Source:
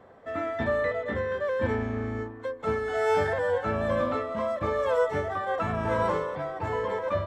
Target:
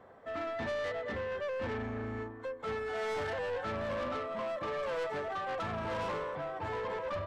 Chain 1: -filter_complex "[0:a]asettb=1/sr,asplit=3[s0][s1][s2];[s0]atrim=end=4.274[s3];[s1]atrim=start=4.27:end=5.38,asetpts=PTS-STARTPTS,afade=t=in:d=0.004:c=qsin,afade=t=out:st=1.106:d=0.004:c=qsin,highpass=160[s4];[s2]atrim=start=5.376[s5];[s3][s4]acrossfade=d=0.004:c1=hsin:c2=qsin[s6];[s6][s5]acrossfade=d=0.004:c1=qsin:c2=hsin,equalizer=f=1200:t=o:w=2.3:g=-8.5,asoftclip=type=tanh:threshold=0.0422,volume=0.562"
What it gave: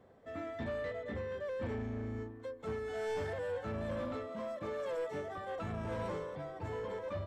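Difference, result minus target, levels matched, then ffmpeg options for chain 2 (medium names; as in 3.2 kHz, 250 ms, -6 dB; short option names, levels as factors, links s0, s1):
1 kHz band -4.0 dB
-filter_complex "[0:a]asettb=1/sr,asplit=3[s0][s1][s2];[s0]atrim=end=4.274[s3];[s1]atrim=start=4.27:end=5.38,asetpts=PTS-STARTPTS,afade=t=in:d=0.004:c=qsin,afade=t=out:st=1.106:d=0.004:c=qsin,highpass=160[s4];[s2]atrim=start=5.376[s5];[s3][s4]acrossfade=d=0.004:c1=hsin:c2=qsin[s6];[s6][s5]acrossfade=d=0.004:c1=qsin:c2=hsin,equalizer=f=1200:t=o:w=2.3:g=3,asoftclip=type=tanh:threshold=0.0422,volume=0.562"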